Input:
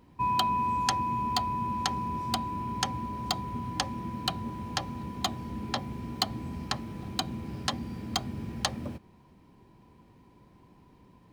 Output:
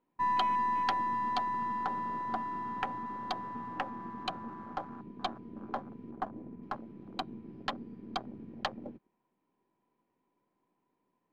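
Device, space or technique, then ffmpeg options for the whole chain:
crystal radio: -filter_complex "[0:a]asettb=1/sr,asplit=3[link_01][link_02][link_03];[link_01]atrim=end=6.114[link_04];[link_02]atrim=start=6.11:end=6.63,asetpts=PTS-STARTPTS,afade=type=in:duration=0.004:curve=qsin,afade=type=out:start_time=0.516:duration=0.004:curve=qsin,lowpass=2000[link_05];[link_03]atrim=start=6.626[link_06];[link_04][link_05]acrossfade=duration=0.004:curve1=hsin:curve2=qsin[link_07];[link_07][link_06]acrossfade=duration=0.004:curve1=qsin:curve2=hsin,afwtdn=0.0178,highpass=290,lowpass=2600,aeval=exprs='if(lt(val(0),0),0.708*val(0),val(0))':channel_layout=same"

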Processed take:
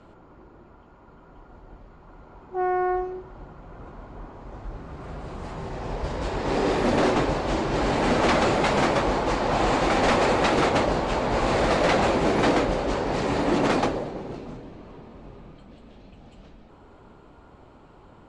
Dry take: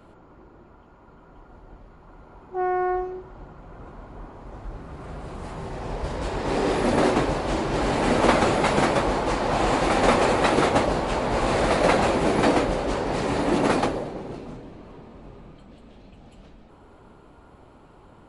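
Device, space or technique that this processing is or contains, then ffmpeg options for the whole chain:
synthesiser wavefolder: -af "aeval=exprs='0.2*(abs(mod(val(0)/0.2+3,4)-2)-1)':channel_layout=same,lowpass=frequency=7800:width=0.5412,lowpass=frequency=7800:width=1.3066"

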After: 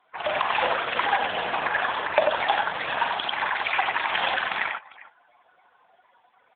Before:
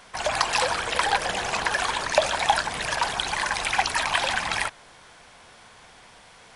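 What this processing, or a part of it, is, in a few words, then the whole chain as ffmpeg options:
mobile call with aggressive noise cancelling: -filter_complex "[0:a]asplit=3[link_01][link_02][link_03];[link_01]afade=type=out:start_time=1.54:duration=0.02[link_04];[link_02]aemphasis=mode=reproduction:type=50fm,afade=type=in:start_time=1.54:duration=0.02,afade=type=out:start_time=2.33:duration=0.02[link_05];[link_03]afade=type=in:start_time=2.33:duration=0.02[link_06];[link_04][link_05][link_06]amix=inputs=3:normalize=0,highpass=170,aecho=1:1:43|94|399:0.376|0.631|0.15,afftdn=noise_reduction=18:noise_floor=-41,volume=1dB" -ar 8000 -c:a libopencore_amrnb -b:a 7950

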